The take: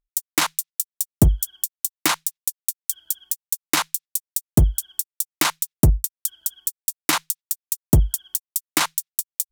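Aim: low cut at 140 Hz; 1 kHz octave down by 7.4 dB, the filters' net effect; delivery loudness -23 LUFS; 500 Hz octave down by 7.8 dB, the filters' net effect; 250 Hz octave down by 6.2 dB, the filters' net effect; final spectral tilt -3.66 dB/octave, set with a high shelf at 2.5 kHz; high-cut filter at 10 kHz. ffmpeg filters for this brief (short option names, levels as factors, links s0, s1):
-af "highpass=140,lowpass=10000,equalizer=f=250:t=o:g=-5.5,equalizer=f=500:t=o:g=-7,equalizer=f=1000:t=o:g=-6,highshelf=f=2500:g=-6.5,volume=2.66"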